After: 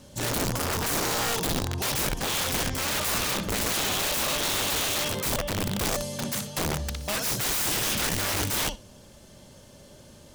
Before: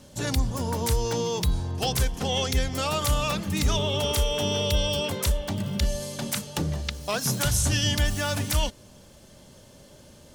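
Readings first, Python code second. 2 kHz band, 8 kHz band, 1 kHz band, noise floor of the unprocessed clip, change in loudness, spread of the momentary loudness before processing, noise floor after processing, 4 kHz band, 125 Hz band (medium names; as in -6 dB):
+3.0 dB, +3.0 dB, +1.0 dB, -51 dBFS, 0.0 dB, 6 LU, -51 dBFS, 0.0 dB, -6.5 dB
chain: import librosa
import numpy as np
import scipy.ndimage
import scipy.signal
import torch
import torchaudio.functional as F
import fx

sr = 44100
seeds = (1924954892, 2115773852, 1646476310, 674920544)

y = fx.echo_feedback(x, sr, ms=60, feedback_pct=16, wet_db=-9.0)
y = (np.mod(10.0 ** (22.0 / 20.0) * y + 1.0, 2.0) - 1.0) / 10.0 ** (22.0 / 20.0)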